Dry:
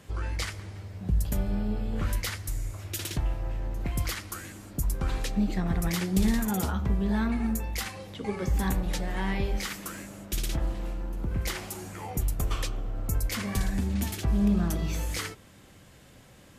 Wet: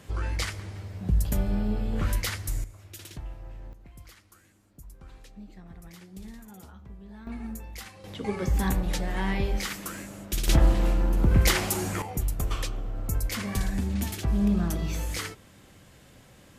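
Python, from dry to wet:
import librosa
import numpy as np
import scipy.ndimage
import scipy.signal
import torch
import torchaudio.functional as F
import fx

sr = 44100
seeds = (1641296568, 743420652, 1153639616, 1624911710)

y = fx.gain(x, sr, db=fx.steps((0.0, 2.0), (2.64, -10.0), (3.73, -19.0), (7.27, -8.5), (8.04, 1.5), (10.48, 10.0), (12.02, 0.0)))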